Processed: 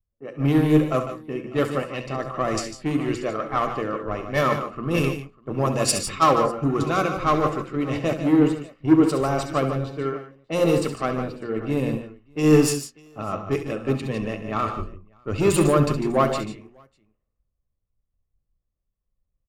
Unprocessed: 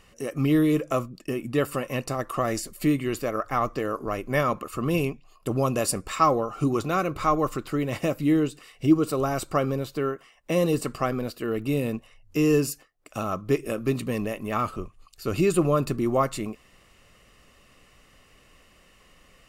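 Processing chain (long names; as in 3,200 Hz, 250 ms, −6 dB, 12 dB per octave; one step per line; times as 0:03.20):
running median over 3 samples
in parallel at −8 dB: wave folding −21.5 dBFS
on the sum: mains-hum notches 60/120/180/240/300/360/420/480/540 Hz
soft clipping −8 dBFS, distortion −30 dB
low-pass that shuts in the quiet parts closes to 760 Hz, open at −18.5 dBFS
on a send: multi-tap delay 66/72/150/171/599 ms −12.5/−11.5/−7.5/−12/−16 dB
on the sum: multiband upward and downward expander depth 100%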